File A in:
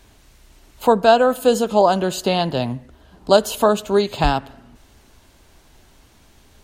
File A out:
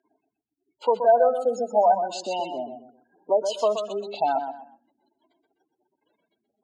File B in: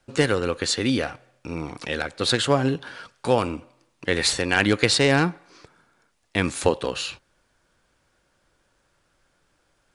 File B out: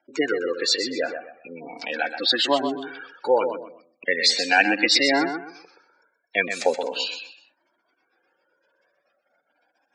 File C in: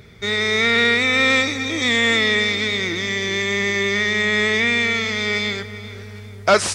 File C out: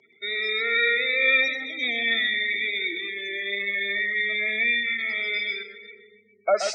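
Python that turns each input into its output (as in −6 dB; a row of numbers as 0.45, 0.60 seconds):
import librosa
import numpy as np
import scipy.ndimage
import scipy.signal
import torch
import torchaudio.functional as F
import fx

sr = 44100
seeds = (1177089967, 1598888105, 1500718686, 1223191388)

y = fx.spec_gate(x, sr, threshold_db=-15, keep='strong')
y = fx.cabinet(y, sr, low_hz=290.0, low_slope=24, high_hz=6800.0, hz=(400.0, 730.0, 1200.0, 2300.0, 5100.0), db=(-5, 4, -7, 5, 5))
y = fx.echo_feedback(y, sr, ms=126, feedback_pct=28, wet_db=-8.0)
y = fx.comb_cascade(y, sr, direction='rising', hz=0.39)
y = y * 10.0 ** (-26 / 20.0) / np.sqrt(np.mean(np.square(y)))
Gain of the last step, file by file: −1.5, +6.5, −3.5 decibels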